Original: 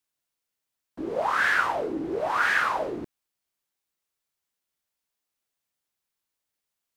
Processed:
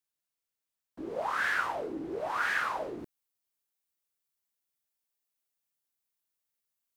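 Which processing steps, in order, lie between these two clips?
treble shelf 8.4 kHz +3.5 dB, from 2.99 s +9 dB; trim -7 dB

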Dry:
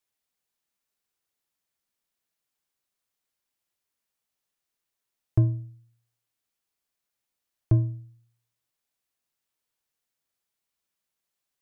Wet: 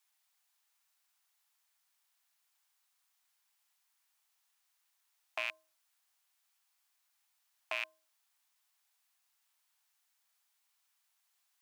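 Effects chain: rattle on loud lows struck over -24 dBFS, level -29 dBFS; steep high-pass 730 Hz 36 dB/octave; trim +6.5 dB

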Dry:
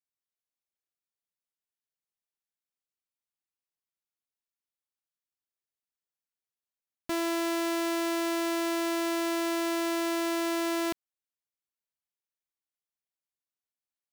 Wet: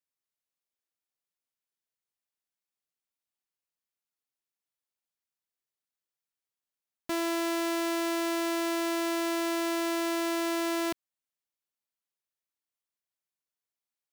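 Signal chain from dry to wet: bass shelf 120 Hz -5 dB

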